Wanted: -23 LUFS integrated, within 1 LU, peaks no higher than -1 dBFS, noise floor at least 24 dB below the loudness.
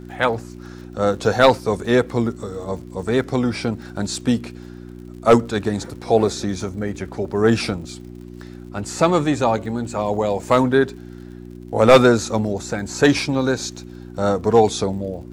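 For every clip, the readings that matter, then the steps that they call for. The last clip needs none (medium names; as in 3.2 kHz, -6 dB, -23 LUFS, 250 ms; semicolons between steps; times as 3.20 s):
tick rate 56 per s; hum 60 Hz; highest harmonic 360 Hz; hum level -34 dBFS; loudness -19.5 LUFS; peak level -1.5 dBFS; loudness target -23.0 LUFS
-> de-click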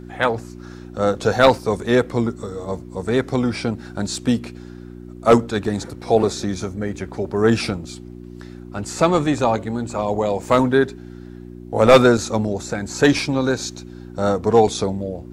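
tick rate 0.26 per s; hum 60 Hz; highest harmonic 360 Hz; hum level -34 dBFS
-> de-hum 60 Hz, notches 6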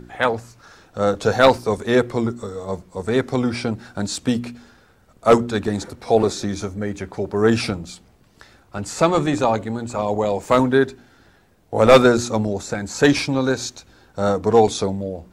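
hum not found; loudness -20.0 LUFS; peak level -1.5 dBFS; loudness target -23.0 LUFS
-> trim -3 dB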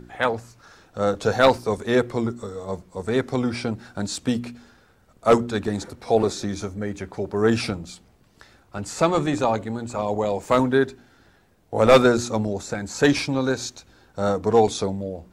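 loudness -23.0 LUFS; peak level -4.5 dBFS; noise floor -58 dBFS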